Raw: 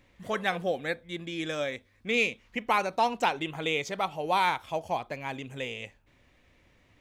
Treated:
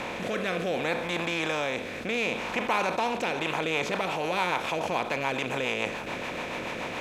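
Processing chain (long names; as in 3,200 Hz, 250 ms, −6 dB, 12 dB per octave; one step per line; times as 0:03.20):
compressor on every frequency bin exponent 0.4
rotating-speaker cabinet horn 0.65 Hz, later 7 Hz, at 0:03.14
envelope flattener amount 50%
level −6 dB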